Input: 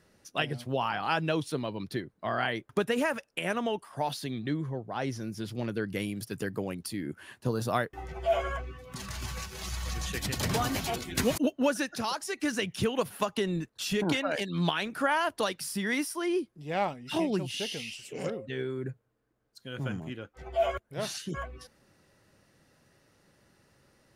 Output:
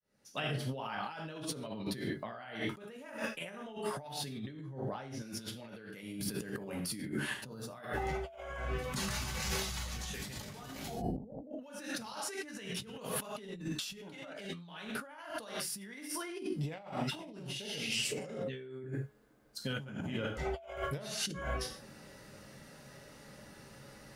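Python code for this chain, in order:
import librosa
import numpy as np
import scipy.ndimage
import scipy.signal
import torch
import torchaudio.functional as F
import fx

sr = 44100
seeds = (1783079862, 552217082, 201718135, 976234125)

y = fx.fade_in_head(x, sr, length_s=1.79)
y = fx.steep_lowpass(y, sr, hz=820.0, slope=72, at=(10.86, 11.51))
y = fx.comb_fb(y, sr, f0_hz=420.0, decay_s=0.6, harmonics='all', damping=0.0, mix_pct=40)
y = fx.rev_gated(y, sr, seeds[0], gate_ms=170, shape='falling', drr_db=0.0)
y = fx.over_compress(y, sr, threshold_db=-45.0, ratio=-1.0)
y = fx.low_shelf(y, sr, hz=430.0, db=-9.0, at=(5.22, 6.03))
y = F.gain(torch.from_numpy(y), 3.0).numpy()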